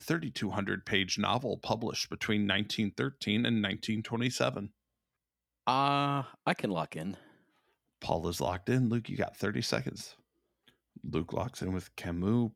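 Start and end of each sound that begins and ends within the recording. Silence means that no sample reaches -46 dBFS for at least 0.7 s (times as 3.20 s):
5.67–7.17 s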